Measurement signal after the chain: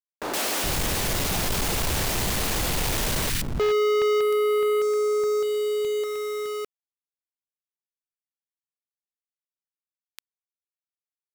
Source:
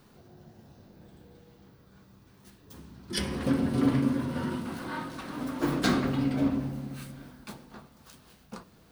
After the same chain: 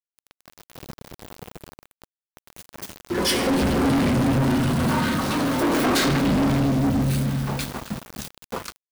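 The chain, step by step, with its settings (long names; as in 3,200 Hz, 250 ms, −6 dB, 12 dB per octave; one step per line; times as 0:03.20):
three-band delay without the direct sound mids, highs, lows 120/420 ms, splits 270/1,400 Hz
centre clipping without the shift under −48 dBFS
leveller curve on the samples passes 5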